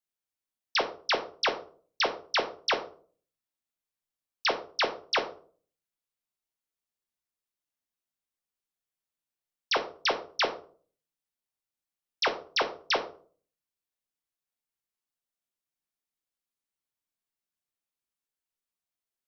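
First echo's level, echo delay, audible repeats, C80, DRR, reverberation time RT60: no echo, no echo, no echo, 16.5 dB, 5.0 dB, 0.45 s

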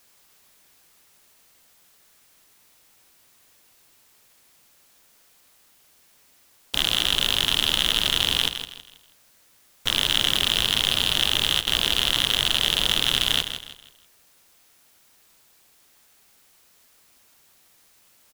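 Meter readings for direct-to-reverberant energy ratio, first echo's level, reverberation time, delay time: no reverb, -9.5 dB, no reverb, 161 ms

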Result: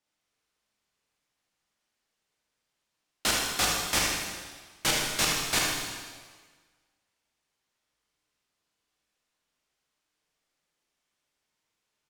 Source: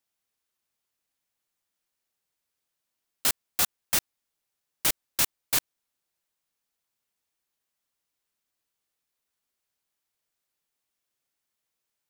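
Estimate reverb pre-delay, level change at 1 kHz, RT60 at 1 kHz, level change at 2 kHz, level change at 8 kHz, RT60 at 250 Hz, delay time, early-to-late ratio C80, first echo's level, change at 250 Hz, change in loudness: 7 ms, +6.5 dB, 1.5 s, +6.5 dB, +1.0 dB, 1.5 s, 78 ms, 2.0 dB, -6.0 dB, +7.0 dB, -0.5 dB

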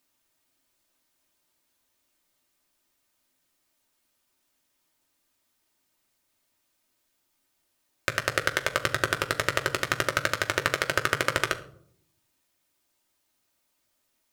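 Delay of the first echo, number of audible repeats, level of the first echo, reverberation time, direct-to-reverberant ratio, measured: no echo, no echo, no echo, 0.65 s, 3.0 dB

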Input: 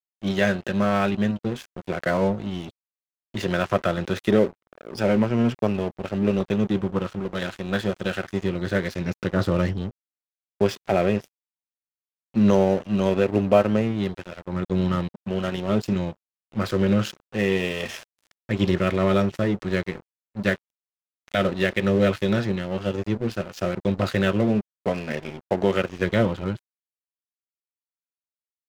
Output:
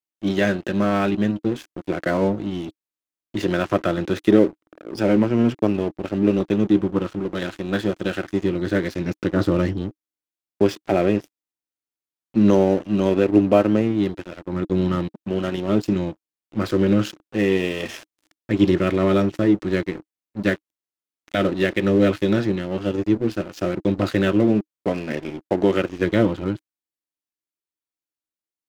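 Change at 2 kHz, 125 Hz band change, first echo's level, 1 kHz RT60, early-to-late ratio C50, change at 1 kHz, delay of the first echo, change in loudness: 0.0 dB, +0.5 dB, no echo, no reverb, no reverb, 0.0 dB, no echo, +3.0 dB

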